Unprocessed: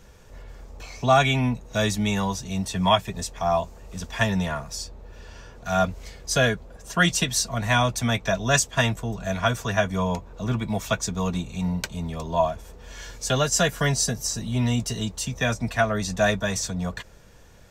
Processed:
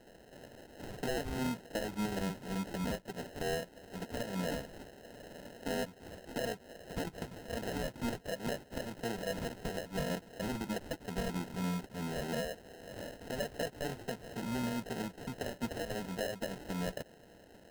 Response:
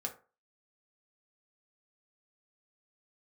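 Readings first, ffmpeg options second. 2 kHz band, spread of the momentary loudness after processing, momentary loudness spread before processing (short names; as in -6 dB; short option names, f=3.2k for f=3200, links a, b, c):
-16.5 dB, 13 LU, 12 LU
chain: -filter_complex "[0:a]highpass=280,lowpass=3.8k,acompressor=threshold=-30dB:ratio=4,alimiter=level_in=2.5dB:limit=-24dB:level=0:latency=1:release=178,volume=-2.5dB,acrossover=split=2700[a][b];[b]acompressor=threshold=-50dB:ratio=4:attack=1:release=60[c];[a][c]amix=inputs=2:normalize=0,acrusher=samples=38:mix=1:aa=0.000001"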